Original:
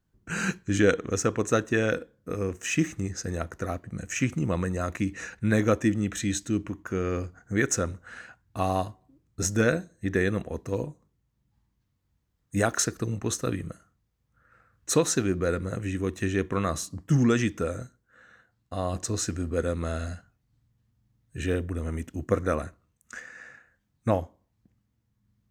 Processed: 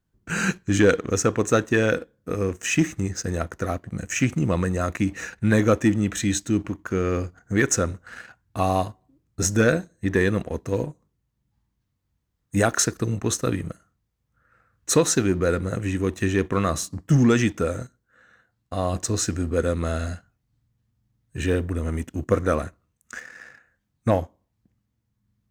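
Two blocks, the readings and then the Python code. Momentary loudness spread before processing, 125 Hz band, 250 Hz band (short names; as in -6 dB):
15 LU, +4.5 dB, +4.5 dB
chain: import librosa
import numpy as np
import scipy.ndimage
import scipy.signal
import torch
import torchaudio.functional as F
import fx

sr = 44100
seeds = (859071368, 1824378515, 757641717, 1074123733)

y = fx.leveller(x, sr, passes=1)
y = y * 10.0 ** (1.0 / 20.0)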